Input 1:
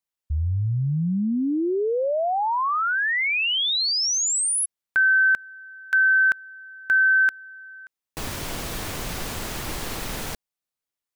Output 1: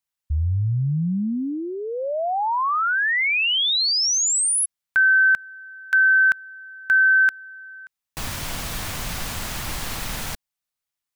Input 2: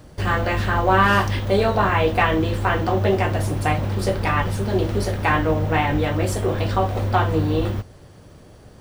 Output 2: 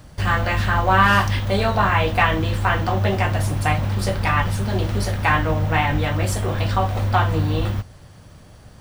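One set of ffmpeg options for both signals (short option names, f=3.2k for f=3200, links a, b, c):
-af "equalizer=f=390:w=1.2:g=-9,volume=2.5dB"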